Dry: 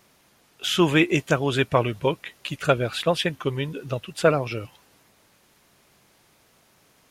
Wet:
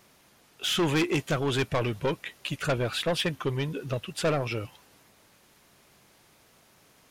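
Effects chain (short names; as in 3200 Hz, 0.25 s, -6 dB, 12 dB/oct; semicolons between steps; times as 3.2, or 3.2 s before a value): soft clip -21 dBFS, distortion -7 dB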